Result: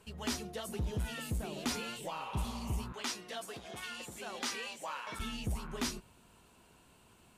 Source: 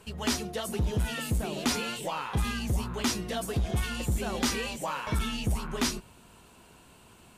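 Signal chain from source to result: 2.2–2.73 spectral repair 440–3200 Hz both; 2.92–5.2 weighting filter A; gain -7.5 dB

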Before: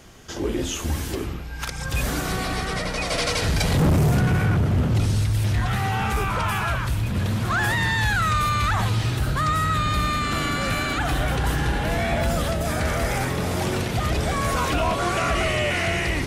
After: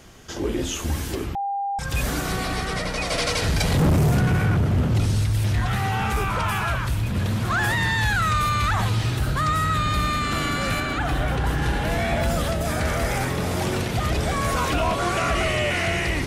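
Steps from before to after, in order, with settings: 1.35–1.79 bleep 799 Hz -23 dBFS; 10.8–11.62 high shelf 3600 Hz -7 dB

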